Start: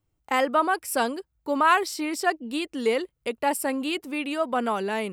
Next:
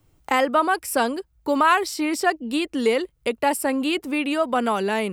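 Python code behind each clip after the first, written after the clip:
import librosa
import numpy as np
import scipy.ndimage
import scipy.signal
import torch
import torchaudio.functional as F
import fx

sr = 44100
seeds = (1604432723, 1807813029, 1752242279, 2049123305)

y = fx.low_shelf(x, sr, hz=73.0, db=10.0)
y = fx.band_squash(y, sr, depth_pct=40)
y = y * librosa.db_to_amplitude(3.0)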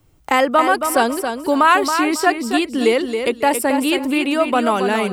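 y = fx.echo_feedback(x, sr, ms=274, feedback_pct=25, wet_db=-7.0)
y = y * librosa.db_to_amplitude(4.5)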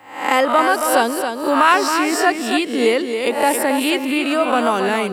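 y = fx.spec_swells(x, sr, rise_s=0.55)
y = scipy.signal.sosfilt(scipy.signal.butter(2, 150.0, 'highpass', fs=sr, output='sos'), y)
y = y * librosa.db_to_amplitude(-1.5)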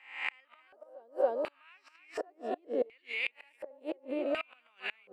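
y = fx.gate_flip(x, sr, shuts_db=-8.0, range_db=-31)
y = fx.filter_lfo_bandpass(y, sr, shape='square', hz=0.69, low_hz=550.0, high_hz=2400.0, q=5.4)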